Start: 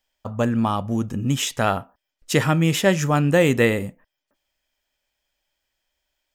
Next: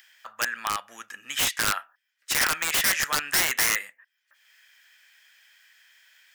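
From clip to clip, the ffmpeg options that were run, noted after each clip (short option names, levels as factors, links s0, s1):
-af "highpass=f=1700:t=q:w=3.5,aeval=exprs='(mod(6.31*val(0)+1,2)-1)/6.31':c=same,acompressor=mode=upward:threshold=0.00708:ratio=2.5"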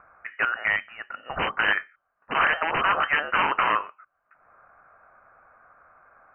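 -af "lowpass=f=2600:t=q:w=0.5098,lowpass=f=2600:t=q:w=0.6013,lowpass=f=2600:t=q:w=0.9,lowpass=f=2600:t=q:w=2.563,afreqshift=-3100,volume=1.78"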